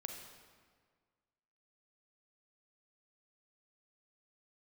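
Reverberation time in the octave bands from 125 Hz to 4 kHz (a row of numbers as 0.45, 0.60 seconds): 1.8, 1.8, 1.7, 1.7, 1.5, 1.2 seconds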